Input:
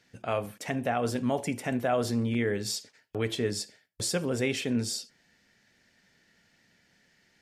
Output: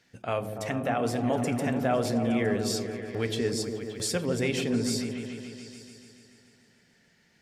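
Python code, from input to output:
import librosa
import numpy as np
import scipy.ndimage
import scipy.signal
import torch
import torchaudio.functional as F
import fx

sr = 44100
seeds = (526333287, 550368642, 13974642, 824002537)

y = fx.echo_opening(x, sr, ms=144, hz=400, octaves=1, feedback_pct=70, wet_db=-3)
y = fx.quant_dither(y, sr, seeds[0], bits=12, dither='none', at=(3.47, 4.18))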